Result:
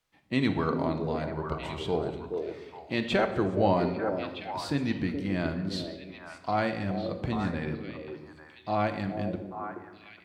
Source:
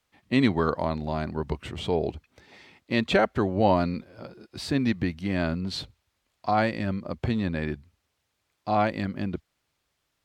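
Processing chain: on a send: repeats whose band climbs or falls 421 ms, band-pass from 420 Hz, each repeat 1.4 oct, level -2 dB; on the sum: simulated room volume 690 m³, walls mixed, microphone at 0.66 m; trim -4.5 dB

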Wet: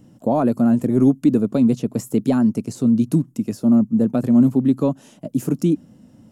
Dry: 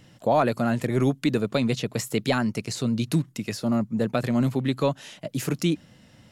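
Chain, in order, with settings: ten-band graphic EQ 250 Hz +11 dB, 2 kHz -11 dB, 4 kHz -10 dB

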